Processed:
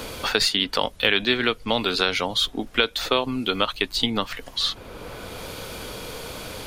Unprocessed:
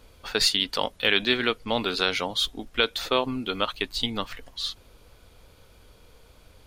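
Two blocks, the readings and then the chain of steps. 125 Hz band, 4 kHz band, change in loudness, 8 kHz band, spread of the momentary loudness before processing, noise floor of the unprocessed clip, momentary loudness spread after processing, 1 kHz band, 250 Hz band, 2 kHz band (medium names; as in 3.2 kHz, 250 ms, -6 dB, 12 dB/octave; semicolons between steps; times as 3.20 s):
+4.5 dB, +3.0 dB, +3.0 dB, +2.0 dB, 10 LU, -56 dBFS, 15 LU, +3.0 dB, +4.0 dB, +3.0 dB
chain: three bands compressed up and down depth 70%; trim +3 dB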